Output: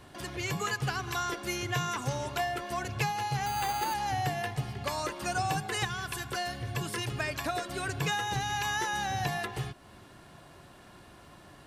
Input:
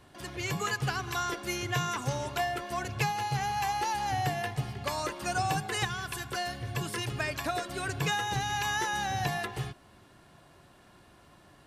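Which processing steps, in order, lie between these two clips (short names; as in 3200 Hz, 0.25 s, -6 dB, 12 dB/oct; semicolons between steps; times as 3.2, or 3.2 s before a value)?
in parallel at +2 dB: compressor, threshold -44 dBFS, peak gain reduction 18 dB; 3.46–3.94 on the sum: careless resampling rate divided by 8×, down none, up hold; gain -2.5 dB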